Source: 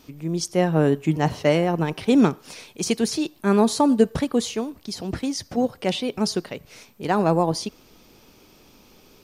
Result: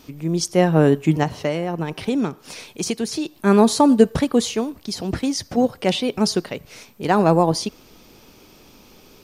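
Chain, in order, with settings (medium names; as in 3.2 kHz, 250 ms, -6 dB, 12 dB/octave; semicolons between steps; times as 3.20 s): 1.23–3.37 s: compression 2.5:1, threshold -27 dBFS, peak gain reduction 10 dB; trim +4 dB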